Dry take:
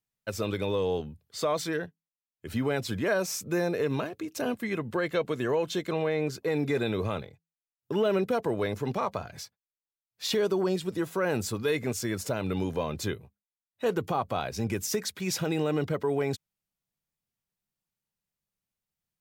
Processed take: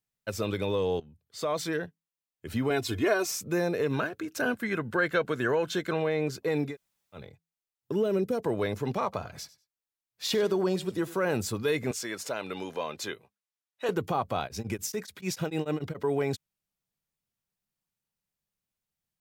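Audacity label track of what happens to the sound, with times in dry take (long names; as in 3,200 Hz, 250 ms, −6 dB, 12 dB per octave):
1.000000	1.670000	fade in, from −16 dB
2.700000	3.310000	comb filter 2.8 ms, depth 81%
3.930000	6.000000	parametric band 1,500 Hz +12 dB 0.34 octaves
6.690000	7.200000	fill with room tone, crossfade 0.16 s
7.920000	8.440000	flat-topped bell 1,600 Hz −8.5 dB 2.9 octaves
9.030000	11.350000	repeating echo 96 ms, feedback 20%, level −18 dB
11.910000	13.890000	meter weighting curve A
14.420000	16.040000	tremolo along a rectified sine nulls at 6.9 Hz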